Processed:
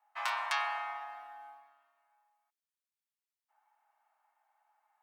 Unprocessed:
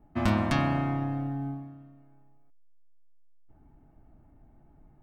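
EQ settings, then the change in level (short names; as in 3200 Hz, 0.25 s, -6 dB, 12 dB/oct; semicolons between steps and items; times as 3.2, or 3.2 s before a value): Chebyshev high-pass 850 Hz, order 4; 0.0 dB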